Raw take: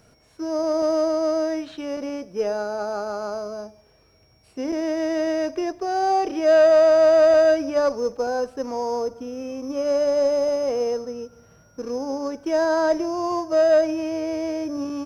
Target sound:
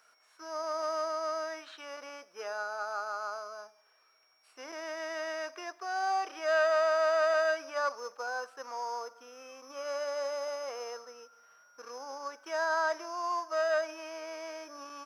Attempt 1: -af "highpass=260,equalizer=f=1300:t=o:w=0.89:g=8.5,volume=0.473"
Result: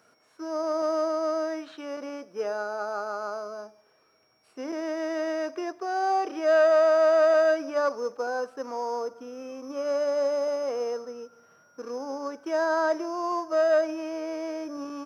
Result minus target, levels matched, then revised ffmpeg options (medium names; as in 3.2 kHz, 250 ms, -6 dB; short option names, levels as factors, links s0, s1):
250 Hz band +11.5 dB
-af "highpass=970,equalizer=f=1300:t=o:w=0.89:g=8.5,volume=0.473"